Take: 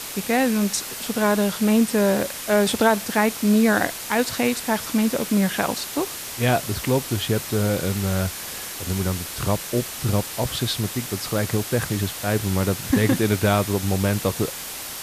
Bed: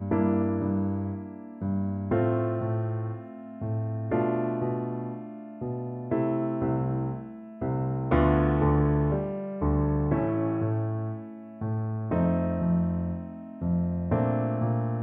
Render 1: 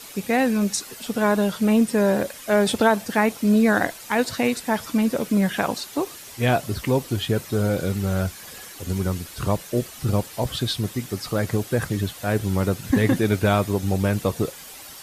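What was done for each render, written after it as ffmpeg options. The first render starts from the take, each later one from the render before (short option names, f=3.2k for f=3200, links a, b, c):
-af "afftdn=nr=10:nf=-33"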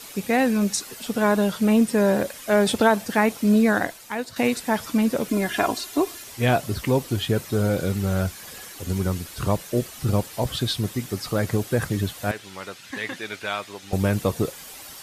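-filter_complex "[0:a]asettb=1/sr,asplit=3[a][b][c];[a]atrim=end=5.284[d];[b]atrim=start=5.28:end=6.24,asetpts=PTS-STARTPTS,afade=t=in:d=0.004:c=qsin,afade=t=out:st=0.956:d=0.004:c=qsin,aecho=1:1:2.9:0.66,atrim=end_sample=42336[e];[c]atrim=start=6.236[f];[d][e]acrossfade=d=0.004:c1=hsin:c2=qsin[g];[g][f]acrossfade=d=0.004:c1=qsin:c2=hsin,asettb=1/sr,asplit=3[h][i][j];[h]atrim=end=12.314[k];[i]atrim=start=12.31:end=13.93,asetpts=PTS-STARTPTS,afade=t=in:d=0.004:c=qsin,afade=t=out:st=1.616:d=0.004:c=qsin,bandpass=f=2.8k:t=q:w=0.73[l];[j]atrim=start=13.926[m];[k][l]acrossfade=d=0.004:c1=hsin:c2=qsin[n];[n][m]acrossfade=d=0.004:c1=qsin:c2=hsin,asplit=2[o][p];[o]atrim=end=4.36,asetpts=PTS-STARTPTS,afade=t=out:st=3.56:d=0.8:silence=0.251189[q];[p]atrim=start=4.36,asetpts=PTS-STARTPTS,afade=t=in:d=0.004:c=hsin:silence=0.251189[r];[q][r]concat=n=2:v=0:a=1"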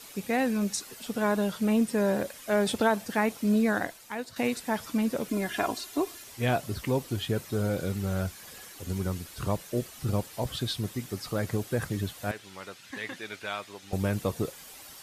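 -af "volume=-6.5dB"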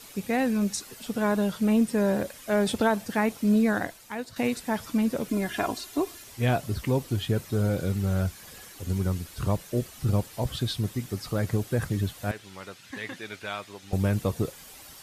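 -af "lowshelf=f=170:g=7"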